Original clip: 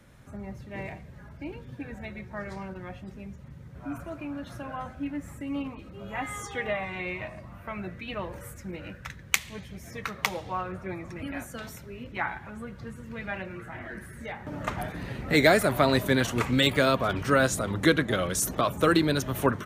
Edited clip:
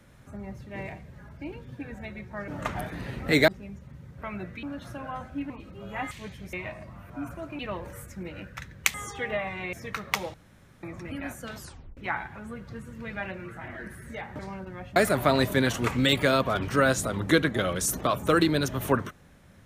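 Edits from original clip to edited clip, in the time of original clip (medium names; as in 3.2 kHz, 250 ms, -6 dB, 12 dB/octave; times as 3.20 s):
2.48–3.05 s: swap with 14.50–15.50 s
3.79–4.28 s: swap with 7.66–8.07 s
5.15–5.69 s: delete
6.30–7.09 s: swap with 9.42–9.84 s
10.45–10.94 s: room tone
11.67 s: tape stop 0.41 s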